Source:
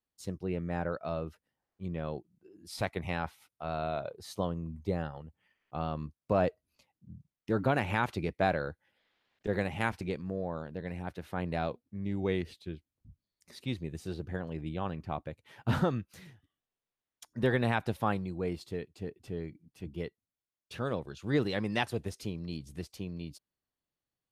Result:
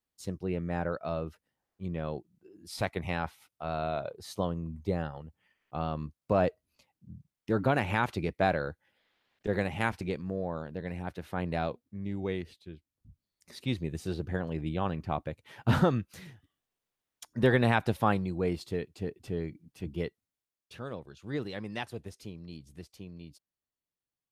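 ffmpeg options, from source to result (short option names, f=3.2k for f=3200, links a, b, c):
-af "volume=11dB,afade=t=out:st=11.57:d=1.11:silence=0.446684,afade=t=in:st=12.68:d=1.09:silence=0.334965,afade=t=out:st=20.04:d=0.77:silence=0.316228"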